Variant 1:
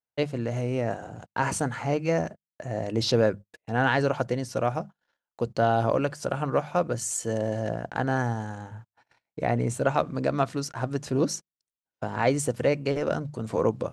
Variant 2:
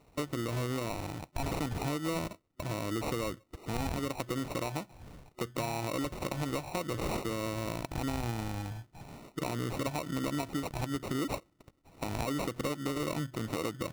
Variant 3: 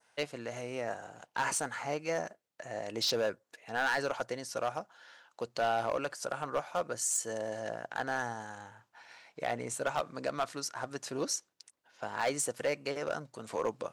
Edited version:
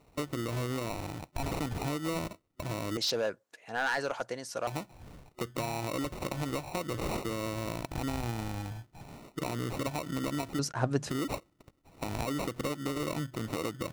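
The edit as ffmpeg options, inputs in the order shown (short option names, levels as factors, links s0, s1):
-filter_complex "[1:a]asplit=3[s0][s1][s2];[s0]atrim=end=2.972[s3];[2:a]atrim=start=2.968:end=4.672[s4];[s1]atrim=start=4.668:end=10.592[s5];[0:a]atrim=start=10.588:end=11.102[s6];[s2]atrim=start=11.098[s7];[s3][s4]acrossfade=d=0.004:c1=hsin:c2=hsin[s8];[s8][s5]acrossfade=d=0.004:c1=hsin:c2=hsin[s9];[s9][s6]acrossfade=d=0.004:c1=hsin:c2=hsin[s10];[s10][s7]acrossfade=d=0.004:c1=hsin:c2=hsin"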